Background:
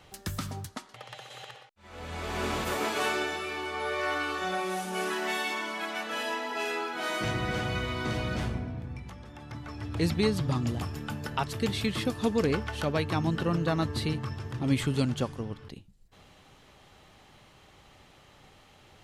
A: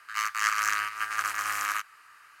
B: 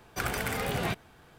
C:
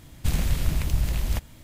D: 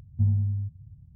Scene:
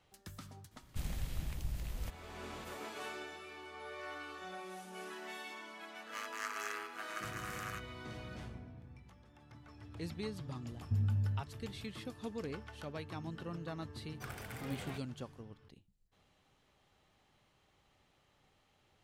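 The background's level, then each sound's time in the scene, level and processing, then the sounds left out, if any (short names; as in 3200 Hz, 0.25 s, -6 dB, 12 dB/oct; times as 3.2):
background -15.5 dB
0.71 add C -15.5 dB
5.98 add A -15.5 dB
10.72 add D -5.5 dB + compressor, threshold -23 dBFS
14.04 add B -16 dB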